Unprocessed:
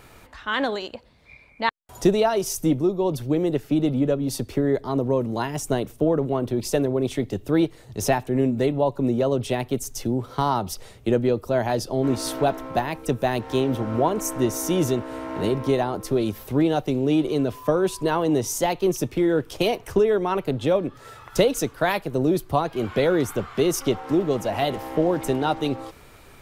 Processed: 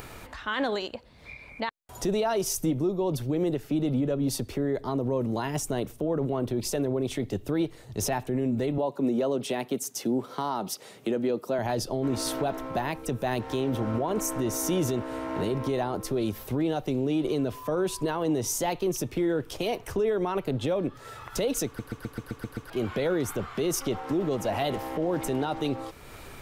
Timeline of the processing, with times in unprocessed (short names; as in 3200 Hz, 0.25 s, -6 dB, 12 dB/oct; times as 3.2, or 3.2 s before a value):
8.78–11.59 HPF 170 Hz 24 dB/oct
21.66 stutter in place 0.13 s, 8 plays
whole clip: upward compressor, threshold -35 dBFS; limiter -18 dBFS; gain -1 dB